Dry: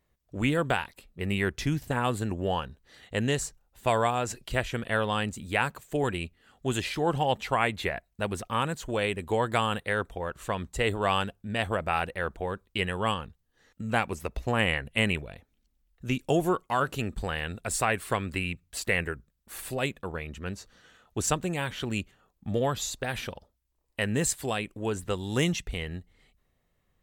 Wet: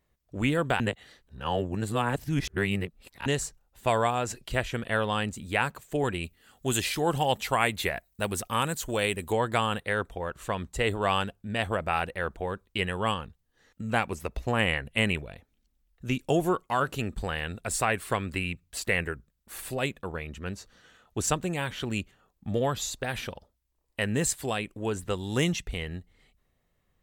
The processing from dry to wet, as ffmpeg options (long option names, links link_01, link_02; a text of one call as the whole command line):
ffmpeg -i in.wav -filter_complex "[0:a]asettb=1/sr,asplit=3[link_01][link_02][link_03];[link_01]atrim=end=6.234[link_04];[link_02]atrim=start=6.23:end=9.33,asetpts=PTS-STARTPTS,afade=type=in:duration=0.004:curve=qsin,afade=type=out:start_time=3.096:duration=0.004:curve=qsin,aemphasis=mode=production:type=50kf[link_05];[link_03]atrim=start=9.326[link_06];[link_04][link_05]acrossfade=duration=0.004:curve1=hsin:curve2=qsin[link_07];[link_07][link_06]acrossfade=duration=0.004:curve1=qsin:curve2=hsin,asplit=3[link_08][link_09][link_10];[link_08]atrim=end=0.802[link_11];[link_09]atrim=start=0.798:end=3.262,asetpts=PTS-STARTPTS,areverse[link_12];[link_10]atrim=start=3.258[link_13];[link_11][link_12]acrossfade=duration=0.004:curve1=hsin:curve2=hsin[link_14];[link_14][link_13]acrossfade=duration=0.004:curve1=hsin:curve2=hsin" out.wav